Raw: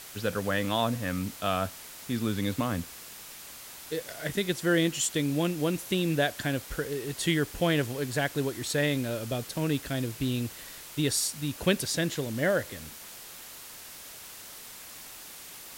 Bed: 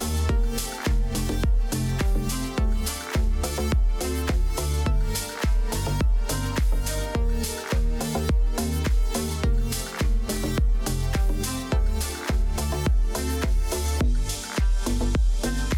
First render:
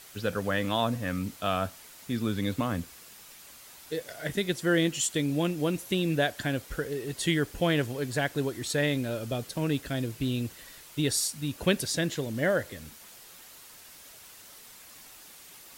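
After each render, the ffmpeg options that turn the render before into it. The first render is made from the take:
-af "afftdn=nr=6:nf=-46"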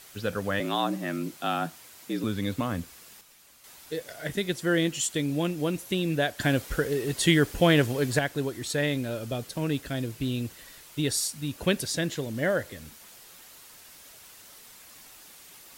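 -filter_complex "[0:a]asettb=1/sr,asplit=3[a][b][c];[a]atrim=end=0.604[d];[b]atrim=start=0.6:end=2.24,asetpts=PTS-STARTPTS,afade=t=in:d=0.004:c=qsin,afade=t=out:st=1.636:d=0.004:c=qsin,afreqshift=70[e];[c]atrim=start=2.236[f];[d][e]acrossfade=d=0.004:c1=hsin:c2=qsin[g];[g][f]acrossfade=d=0.004:c1=qsin:c2=hsin,asplit=5[h][i][j][k][l];[h]atrim=end=3.212[m];[i]atrim=start=3.208:end=3.642,asetpts=PTS-STARTPTS,volume=-6.5dB[n];[j]atrim=start=3.638:end=6.402[o];[k]atrim=start=6.398:end=8.192,asetpts=PTS-STARTPTS,volume=5.5dB[p];[l]atrim=start=8.188[q];[m][n]acrossfade=d=0.004:c1=hsin:c2=hsin[r];[r][o]acrossfade=d=0.004:c1=hsin:c2=hsin[s];[s][p]acrossfade=d=0.004:c1=hsin:c2=hsin[t];[t][q]acrossfade=d=0.004:c1=hsin:c2=hsin"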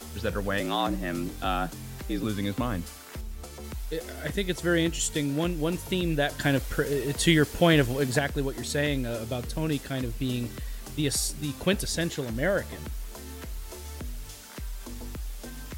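-filter_complex "[1:a]volume=-15dB[a];[0:a][a]amix=inputs=2:normalize=0"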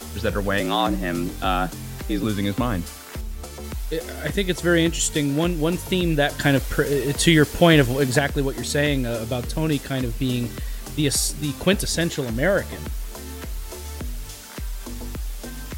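-af "volume=6dB,alimiter=limit=-3dB:level=0:latency=1"

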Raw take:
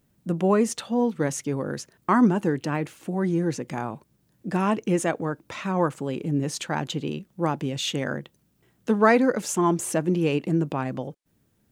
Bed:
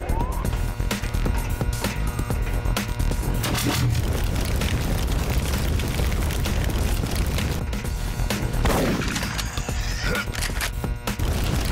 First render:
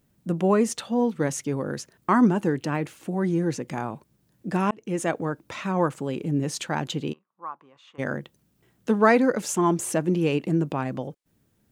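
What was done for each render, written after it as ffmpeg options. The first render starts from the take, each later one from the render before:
-filter_complex "[0:a]asplit=3[a][b][c];[a]afade=t=out:st=7.12:d=0.02[d];[b]bandpass=f=1.1k:t=q:w=6.9,afade=t=in:st=7.12:d=0.02,afade=t=out:st=7.98:d=0.02[e];[c]afade=t=in:st=7.98:d=0.02[f];[d][e][f]amix=inputs=3:normalize=0,asplit=2[g][h];[g]atrim=end=4.71,asetpts=PTS-STARTPTS,afade=t=out:st=4.706:d=0.004:c=hsin[i];[h]atrim=start=4.71,asetpts=PTS-STARTPTS,afade=t=in:d=0.4[j];[i][j]concat=n=2:v=0:a=1"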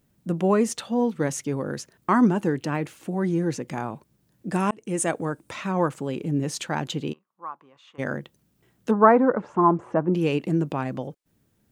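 -filter_complex "[0:a]asettb=1/sr,asplit=3[a][b][c];[a]atrim=end=4.524[d];[b]atrim=start=4.52:end=5.52,asetpts=PTS-STARTPTS,afade=t=in:d=0.004:c=qsin,afade=t=out:st=0.996:d=0.004:c=qsin,equalizer=f=8.8k:w=2.2:g=12.5[e];[c]atrim=start=5.516[f];[d][e]acrossfade=d=0.004:c1=hsin:c2=qsin[g];[g][f]acrossfade=d=0.004:c1=qsin:c2=hsin,asplit=3[h][i][j];[h]afade=t=out:st=8.9:d=0.02[k];[i]lowpass=f=1.1k:t=q:w=2,afade=t=in:st=8.9:d=0.02,afade=t=out:st=10.13:d=0.02[l];[j]afade=t=in:st=10.13:d=0.02[m];[k][l][m]amix=inputs=3:normalize=0"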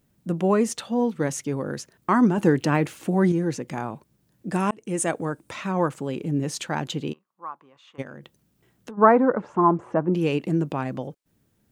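-filter_complex "[0:a]asplit=3[a][b][c];[a]afade=t=out:st=8.01:d=0.02[d];[b]acompressor=threshold=-36dB:ratio=6:attack=3.2:release=140:knee=1:detection=peak,afade=t=in:st=8.01:d=0.02,afade=t=out:st=8.97:d=0.02[e];[c]afade=t=in:st=8.97:d=0.02[f];[d][e][f]amix=inputs=3:normalize=0,asplit=3[g][h][i];[g]atrim=end=2.382[j];[h]atrim=start=2.378:end=3.322,asetpts=PTS-STARTPTS,volume=5.5dB[k];[i]atrim=start=3.318[l];[j][k]acrossfade=d=0.004:c1=hsin:c2=hsin[m];[m][l]acrossfade=d=0.004:c1=hsin:c2=hsin"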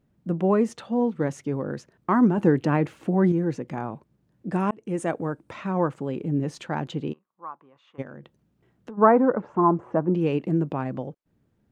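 -af "lowpass=f=1.4k:p=1"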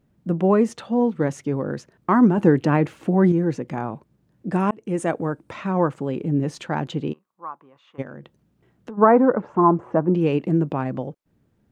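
-af "volume=3.5dB,alimiter=limit=-3dB:level=0:latency=1"

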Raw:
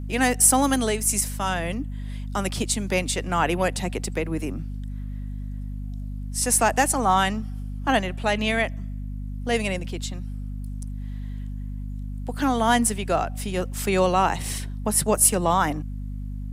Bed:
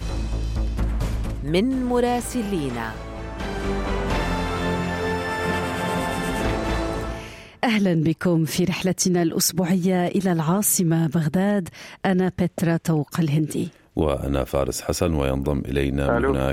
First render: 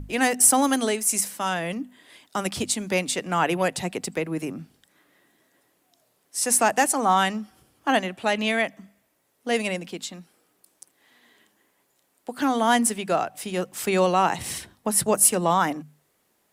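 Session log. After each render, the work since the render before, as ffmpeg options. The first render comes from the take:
-af "bandreject=f=50:t=h:w=6,bandreject=f=100:t=h:w=6,bandreject=f=150:t=h:w=6,bandreject=f=200:t=h:w=6,bandreject=f=250:t=h:w=6"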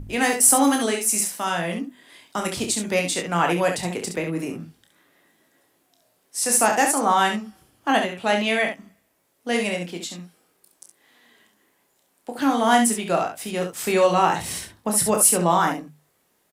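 -filter_complex "[0:a]asplit=2[a][b];[b]adelay=18,volume=-11.5dB[c];[a][c]amix=inputs=2:normalize=0,asplit=2[d][e];[e]aecho=0:1:29|68:0.473|0.473[f];[d][f]amix=inputs=2:normalize=0"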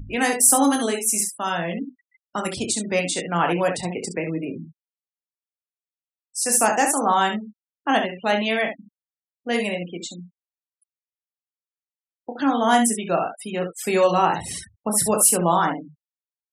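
-af "afftfilt=real='re*gte(hypot(re,im),0.0251)':imag='im*gte(hypot(re,im),0.0251)':win_size=1024:overlap=0.75,adynamicequalizer=threshold=0.0141:dfrequency=2100:dqfactor=1.8:tfrequency=2100:tqfactor=1.8:attack=5:release=100:ratio=0.375:range=2:mode=cutabove:tftype=bell"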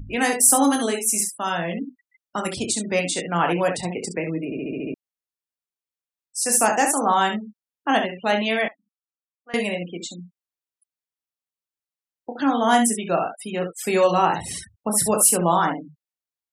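-filter_complex "[0:a]asettb=1/sr,asplit=3[a][b][c];[a]atrim=end=8.684[d];[b]atrim=start=8.68:end=9.54,asetpts=PTS-STARTPTS,afade=t=in:d=0.004:c=qsin,afade=t=out:st=0.856:d=0.004:c=qsin,bandpass=f=1.2k:t=q:w=4.5[e];[c]atrim=start=9.536[f];[d][e]acrossfade=d=0.004:c1=hsin:c2=qsin[g];[g][f]acrossfade=d=0.004:c1=qsin:c2=hsin,asplit=8[h][i][j][k][l][m][n][o];[h]atrim=end=4.522[p];[i]atrim=start=4.448:end=4.522[q];[j]atrim=start=4.448:end=4.522[r];[k]atrim=start=4.448:end=4.522[s];[l]atrim=start=4.448:end=4.522[t];[m]atrim=start=4.448:end=4.522[u];[n]atrim=start=4.448:end=4.522[v];[o]atrim=start=4.938[w];[p][q]acrossfade=d=0.004:c1=hsin:c2=hsin[x];[x][r]acrossfade=d=0.004:c1=hsin:c2=hsin[y];[y][s]acrossfade=d=0.004:c1=hsin:c2=hsin[z];[z][t]acrossfade=d=0.004:c1=hsin:c2=hsin[aa];[aa][u]acrossfade=d=0.004:c1=hsin:c2=hsin[ab];[ab][v]acrossfade=d=0.004:c1=hsin:c2=hsin[ac];[ac][w]acrossfade=d=0.004:c1=hsin:c2=hsin"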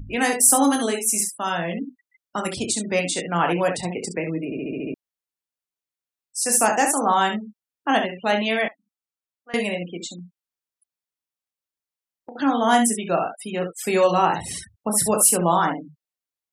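-filter_complex "[0:a]asettb=1/sr,asplit=3[a][b][c];[a]atrim=end=10.184[d];[b]atrim=start=10.18:end=12.36,asetpts=PTS-STARTPTS,afade=t=in:d=0.004:c=qsin,afade=t=out:st=2.176:d=0.004:c=qsin,acompressor=threshold=-33dB:ratio=6:attack=3.2:release=140:knee=1:detection=peak[e];[c]atrim=start=12.356[f];[d][e]acrossfade=d=0.004:c1=hsin:c2=qsin[g];[g][f]acrossfade=d=0.004:c1=qsin:c2=hsin"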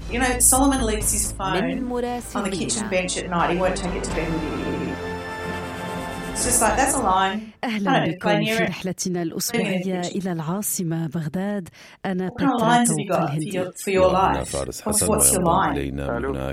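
-filter_complex "[1:a]volume=-5dB[a];[0:a][a]amix=inputs=2:normalize=0"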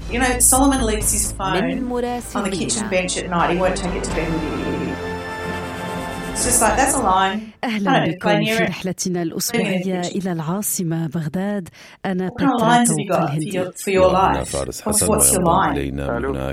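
-af "volume=3dB,alimiter=limit=-1dB:level=0:latency=1"

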